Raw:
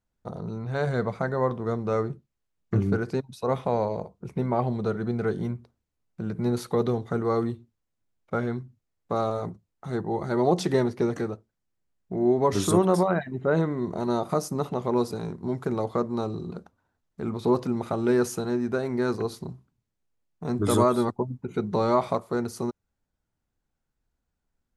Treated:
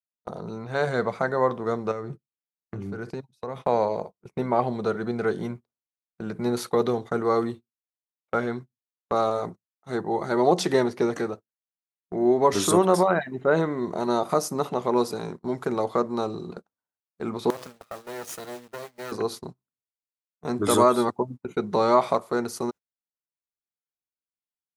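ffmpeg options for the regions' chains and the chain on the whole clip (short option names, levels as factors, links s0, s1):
-filter_complex "[0:a]asettb=1/sr,asplit=3[s0][s1][s2];[s0]atrim=end=1.914[s3];[s1]atrim=start=1.91:end=3.62,asetpts=PTS-STARTPTS,afade=t=in:d=0.004:c=qsin,afade=t=out:st=1.706:d=0.004:c=qsin,acompressor=threshold=0.0282:ratio=16:attack=3.2:release=140:knee=1:detection=peak,equalizer=f=120:w=0.82:g=7.5[s4];[s2]atrim=start=3.616[s5];[s3][s4]acrossfade=d=0.004:c1=hsin:c2=qsin[s6];[s6][s5]acrossfade=d=0.004:c1=qsin:c2=hsin,asettb=1/sr,asplit=3[s7][s8][s9];[s7]atrim=end=17.504[s10];[s8]atrim=start=17.5:end=19.12,asetpts=PTS-STARTPTS,afade=t=in:d=0.004:c=qsin,afade=t=out:st=1.616:d=0.004:c=qsin,aecho=1:1:1.6:0.55,atrim=end_sample=71442,acompressor=threshold=0.0316:ratio=10:attack=3.2:release=140:knee=1:detection=peak,acrusher=bits=5:dc=4:mix=0:aa=0.000001[s11];[s9]atrim=start=19.116[s12];[s10][s11]acrossfade=d=0.004:c1=hsin:c2=qsin[s13];[s13][s12]acrossfade=d=0.004:c1=qsin:c2=hsin,highpass=f=400:p=1,agate=range=0.0501:threshold=0.00891:ratio=16:detection=peak,volume=1.78"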